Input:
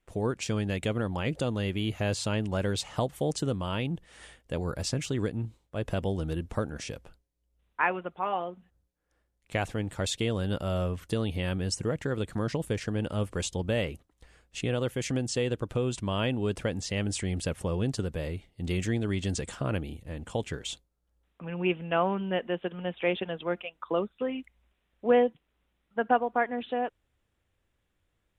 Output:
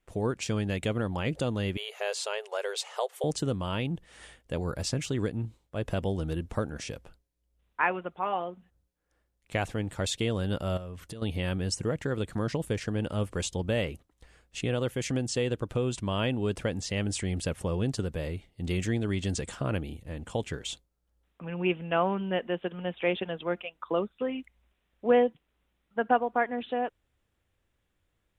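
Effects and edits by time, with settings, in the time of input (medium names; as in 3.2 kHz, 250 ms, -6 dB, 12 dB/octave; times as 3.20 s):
1.77–3.24 s: brick-wall FIR high-pass 390 Hz
10.77–11.22 s: compression 8:1, threshold -37 dBFS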